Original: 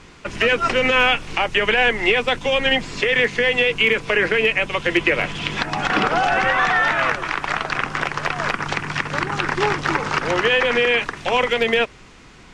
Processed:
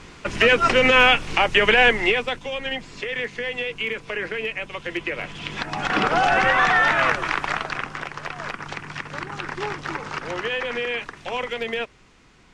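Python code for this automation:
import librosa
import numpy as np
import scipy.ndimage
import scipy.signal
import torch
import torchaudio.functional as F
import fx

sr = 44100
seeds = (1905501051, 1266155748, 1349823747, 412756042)

y = fx.gain(x, sr, db=fx.line((1.89, 1.5), (2.49, -10.0), (5.12, -10.0), (6.25, 0.0), (7.35, 0.0), (8.03, -9.0)))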